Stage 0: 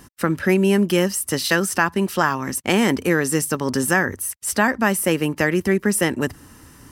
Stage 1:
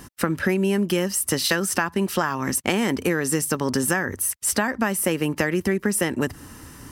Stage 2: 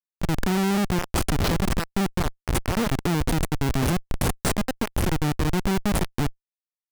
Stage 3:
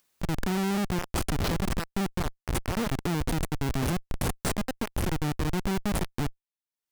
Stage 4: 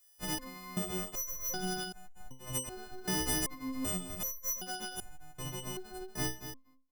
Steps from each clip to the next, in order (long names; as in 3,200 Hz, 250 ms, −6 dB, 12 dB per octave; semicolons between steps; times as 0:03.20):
downward compressor, threshold −22 dBFS, peak gain reduction 10.5 dB; level +3.5 dB
low-shelf EQ 180 Hz +10 dB; comparator with hysteresis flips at −17.5 dBFS
upward compression, threshold −43 dBFS; level −5 dB
every partial snapped to a pitch grid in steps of 3 semitones; repeating echo 238 ms, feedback 18%, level −10 dB; step-sequenced resonator 2.6 Hz 63–770 Hz